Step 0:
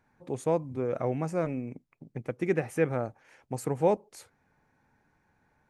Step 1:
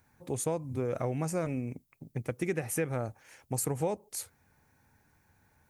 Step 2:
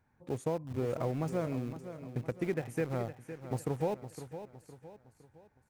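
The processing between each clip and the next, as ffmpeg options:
ffmpeg -i in.wav -af "aemphasis=mode=production:type=75fm,acompressor=threshold=-28dB:ratio=5,equalizer=frequency=83:width_type=o:width=1.1:gain=9.5" out.wav
ffmpeg -i in.wav -filter_complex "[0:a]lowpass=frequency=1700:poles=1,asplit=2[link_01][link_02];[link_02]aeval=exprs='val(0)*gte(abs(val(0)),0.0188)':channel_layout=same,volume=-6dB[link_03];[link_01][link_03]amix=inputs=2:normalize=0,aecho=1:1:511|1022|1533|2044:0.266|0.112|0.0469|0.0197,volume=-4.5dB" out.wav

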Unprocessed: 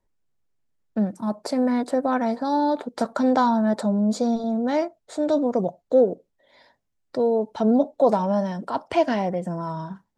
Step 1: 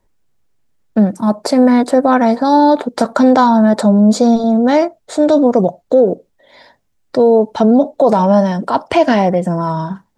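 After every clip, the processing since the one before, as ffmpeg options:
ffmpeg -i in.wav -af "alimiter=level_in=13dB:limit=-1dB:release=50:level=0:latency=1,volume=-1dB" out.wav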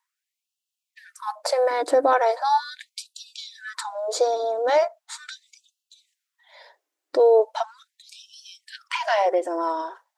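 ffmpeg -i in.wav -af "afftfilt=real='re*gte(b*sr/1024,260*pow(2600/260,0.5+0.5*sin(2*PI*0.39*pts/sr)))':imag='im*gte(b*sr/1024,260*pow(2600/260,0.5+0.5*sin(2*PI*0.39*pts/sr)))':win_size=1024:overlap=0.75,volume=-5.5dB" out.wav

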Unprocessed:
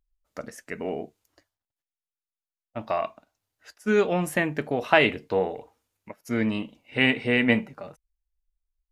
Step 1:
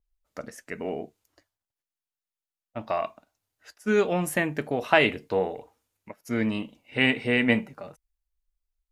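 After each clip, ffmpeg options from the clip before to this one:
ffmpeg -i in.wav -af "adynamicequalizer=threshold=0.00708:dfrequency=6300:dqfactor=0.7:tfrequency=6300:tqfactor=0.7:attack=5:release=100:ratio=0.375:range=2.5:mode=boostabove:tftype=highshelf,volume=-1dB" out.wav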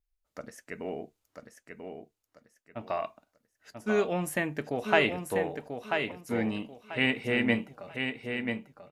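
ffmpeg -i in.wav -af "aecho=1:1:989|1978|2967:0.501|0.135|0.0365,volume=-4.5dB" out.wav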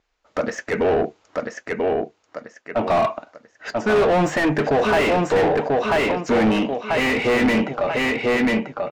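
ffmpeg -i in.wav -filter_complex "[0:a]aresample=16000,aresample=44100,asplit=2[link_01][link_02];[link_02]highpass=frequency=720:poles=1,volume=38dB,asoftclip=type=tanh:threshold=-8dB[link_03];[link_01][link_03]amix=inputs=2:normalize=0,lowpass=frequency=1000:poles=1,volume=-6dB" out.wav

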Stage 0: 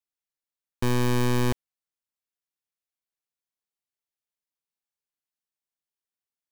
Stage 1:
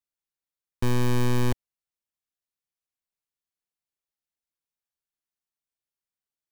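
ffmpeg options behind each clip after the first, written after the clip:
ffmpeg -i in.wav -af "lowshelf=frequency=120:gain=6.5,volume=-2.5dB" out.wav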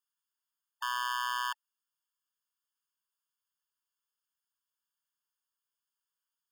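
ffmpeg -i in.wav -filter_complex "[0:a]acrossover=split=4600[link_01][link_02];[link_02]alimiter=level_in=9.5dB:limit=-24dB:level=0:latency=1,volume=-9.5dB[link_03];[link_01][link_03]amix=inputs=2:normalize=0,afftfilt=real='re*eq(mod(floor(b*sr/1024/900),2),1)':imag='im*eq(mod(floor(b*sr/1024/900),2),1)':win_size=1024:overlap=0.75,volume=5dB" out.wav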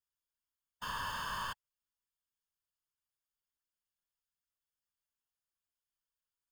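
ffmpeg -i in.wav -af "aeval=exprs='if(lt(val(0),0),0.447*val(0),val(0))':channel_layout=same,afftfilt=real='hypot(re,im)*cos(2*PI*random(0))':imag='hypot(re,im)*sin(2*PI*random(1))':win_size=512:overlap=0.75,volume=2.5dB" out.wav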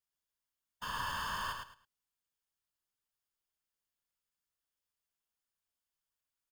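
ffmpeg -i in.wav -af "aecho=1:1:107|214|321:0.562|0.124|0.0272" out.wav

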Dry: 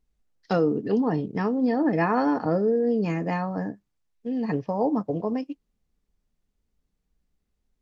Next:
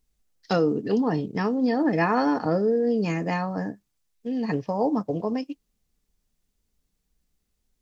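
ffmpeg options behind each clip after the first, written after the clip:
ffmpeg -i in.wav -af "highshelf=frequency=3300:gain=10.5" out.wav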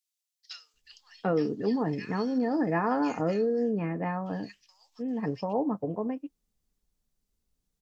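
ffmpeg -i in.wav -filter_complex "[0:a]acrossover=split=2300[link_01][link_02];[link_01]adelay=740[link_03];[link_03][link_02]amix=inputs=2:normalize=0,volume=-4.5dB" out.wav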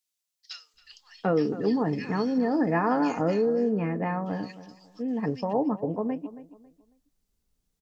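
ffmpeg -i in.wav -filter_complex "[0:a]asplit=2[link_01][link_02];[link_02]adelay=274,lowpass=frequency=2600:poles=1,volume=-15dB,asplit=2[link_03][link_04];[link_04]adelay=274,lowpass=frequency=2600:poles=1,volume=0.29,asplit=2[link_05][link_06];[link_06]adelay=274,lowpass=frequency=2600:poles=1,volume=0.29[link_07];[link_01][link_03][link_05][link_07]amix=inputs=4:normalize=0,volume=2.5dB" out.wav

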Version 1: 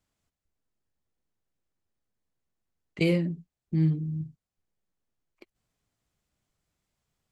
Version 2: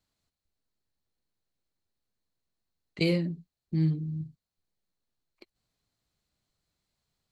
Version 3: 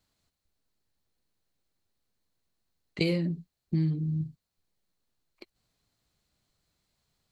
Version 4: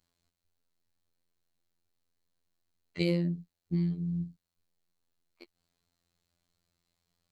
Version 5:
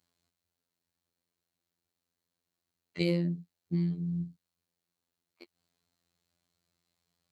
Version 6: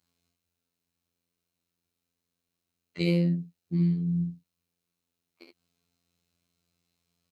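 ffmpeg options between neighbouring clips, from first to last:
ffmpeg -i in.wav -af "equalizer=frequency=4200:width=4.5:gain=11,volume=-2dB" out.wav
ffmpeg -i in.wav -af "acompressor=threshold=-28dB:ratio=6,volume=4.5dB" out.wav
ffmpeg -i in.wav -af "afftfilt=real='hypot(re,im)*cos(PI*b)':imag='0':win_size=2048:overlap=0.75" out.wav
ffmpeg -i in.wav -af "highpass=94" out.wav
ffmpeg -i in.wav -af "aecho=1:1:24|51|70:0.501|0.376|0.562" out.wav

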